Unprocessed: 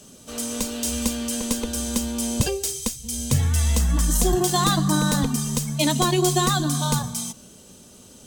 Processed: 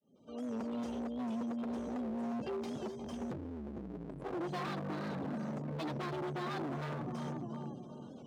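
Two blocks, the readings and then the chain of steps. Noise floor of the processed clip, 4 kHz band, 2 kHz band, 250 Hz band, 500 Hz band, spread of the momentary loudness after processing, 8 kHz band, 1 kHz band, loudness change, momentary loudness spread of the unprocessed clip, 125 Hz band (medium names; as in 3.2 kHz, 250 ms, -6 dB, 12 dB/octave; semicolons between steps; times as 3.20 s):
-50 dBFS, -25.5 dB, -15.5 dB, -12.5 dB, -13.0 dB, 6 LU, -38.0 dB, -15.5 dB, -17.5 dB, 9 LU, -19.5 dB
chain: fade-in on the opening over 0.82 s; in parallel at -9.5 dB: decimation with a swept rate 21×, swing 60% 1.6 Hz; on the sum: spectral gate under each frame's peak -20 dB strong; on a send: tape echo 356 ms, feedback 46%, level -8 dB, low-pass 1.1 kHz; on the sum: compression 4:1, threshold -28 dBFS, peak gain reduction 13 dB; valve stage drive 27 dB, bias 0.25; distance through air 330 m; wavefolder -32 dBFS; high-pass 160 Hz 12 dB/octave; warped record 78 rpm, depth 100 cents; trim -1 dB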